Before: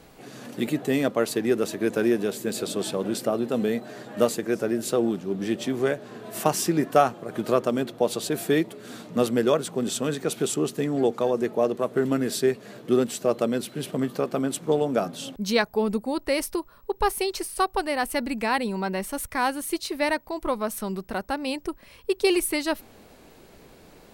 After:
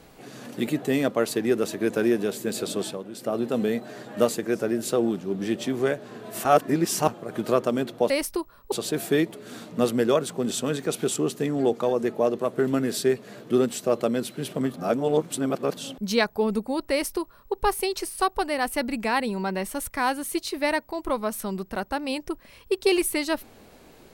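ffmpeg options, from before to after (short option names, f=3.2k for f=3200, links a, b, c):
-filter_complex "[0:a]asplit=9[a][b][c][d][e][f][g][h][i];[a]atrim=end=3.05,asetpts=PTS-STARTPTS,afade=t=out:st=2.79:d=0.26:silence=0.251189[j];[b]atrim=start=3.05:end=3.13,asetpts=PTS-STARTPTS,volume=-12dB[k];[c]atrim=start=3.13:end=6.452,asetpts=PTS-STARTPTS,afade=t=in:d=0.26:silence=0.251189[l];[d]atrim=start=6.448:end=7.082,asetpts=PTS-STARTPTS,areverse[m];[e]atrim=start=7.078:end=8.102[n];[f]atrim=start=16.288:end=16.912[o];[g]atrim=start=8.098:end=14.122[p];[h]atrim=start=14.118:end=15.152,asetpts=PTS-STARTPTS,areverse[q];[i]atrim=start=15.148[r];[j][k][l]concat=n=3:v=0:a=1[s];[s][m]acrossfade=d=0.004:c1=hsin:c2=hsin[t];[t][n]acrossfade=d=0.004:c1=hsin:c2=hsin[u];[u][o]acrossfade=d=0.004:c1=hsin:c2=hsin[v];[v][p]acrossfade=d=0.004:c1=hsin:c2=hsin[w];[w][q]acrossfade=d=0.004:c1=hsin:c2=hsin[x];[x][r]acrossfade=d=0.004:c1=hsin:c2=hsin"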